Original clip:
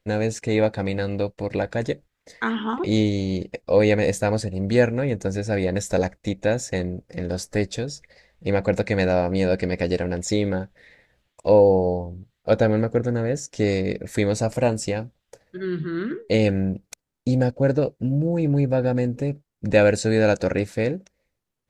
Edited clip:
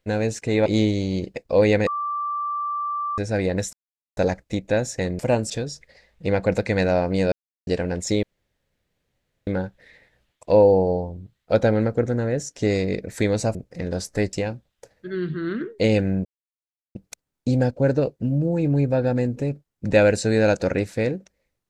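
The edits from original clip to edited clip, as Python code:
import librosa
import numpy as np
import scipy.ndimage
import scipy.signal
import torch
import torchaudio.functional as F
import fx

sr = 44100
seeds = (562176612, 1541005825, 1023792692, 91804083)

y = fx.edit(x, sr, fx.cut(start_s=0.66, length_s=2.18),
    fx.bleep(start_s=4.05, length_s=1.31, hz=1170.0, db=-23.5),
    fx.insert_silence(at_s=5.91, length_s=0.44),
    fx.swap(start_s=6.93, length_s=0.78, other_s=14.52, other_length_s=0.31),
    fx.silence(start_s=9.53, length_s=0.35),
    fx.insert_room_tone(at_s=10.44, length_s=1.24),
    fx.insert_silence(at_s=16.75, length_s=0.7), tone=tone)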